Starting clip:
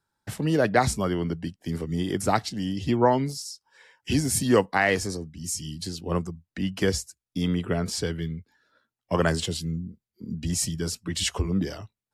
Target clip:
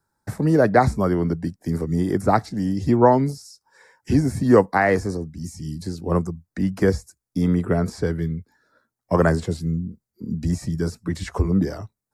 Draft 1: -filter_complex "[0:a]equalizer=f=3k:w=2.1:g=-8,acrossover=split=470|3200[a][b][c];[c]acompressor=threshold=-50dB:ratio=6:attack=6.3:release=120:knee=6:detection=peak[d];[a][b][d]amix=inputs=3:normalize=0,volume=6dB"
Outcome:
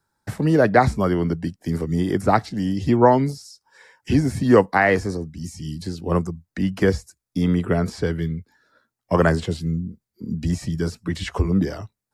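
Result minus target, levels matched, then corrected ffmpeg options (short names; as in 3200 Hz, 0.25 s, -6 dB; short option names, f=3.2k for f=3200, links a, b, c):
4000 Hz band +4.5 dB
-filter_complex "[0:a]equalizer=f=3k:w=2.1:g=-20,acrossover=split=470|3200[a][b][c];[c]acompressor=threshold=-50dB:ratio=6:attack=6.3:release=120:knee=6:detection=peak[d];[a][b][d]amix=inputs=3:normalize=0,volume=6dB"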